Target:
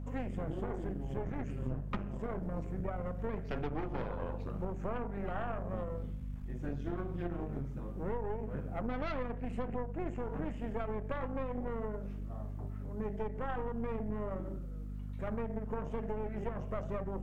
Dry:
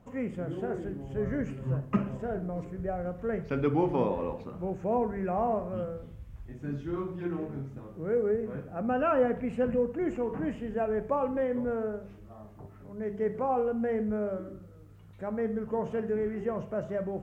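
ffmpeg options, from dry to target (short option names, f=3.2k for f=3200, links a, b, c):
-af "aeval=exprs='0.224*(cos(1*acos(clip(val(0)/0.224,-1,1)))-cos(1*PI/2))+0.0562*(cos(6*acos(clip(val(0)/0.224,-1,1)))-cos(6*PI/2))':c=same,acompressor=threshold=-33dB:ratio=6,aeval=exprs='val(0)+0.0112*(sin(2*PI*50*n/s)+sin(2*PI*2*50*n/s)/2+sin(2*PI*3*50*n/s)/3+sin(2*PI*4*50*n/s)/4+sin(2*PI*5*50*n/s)/5)':c=same,volume=-1dB"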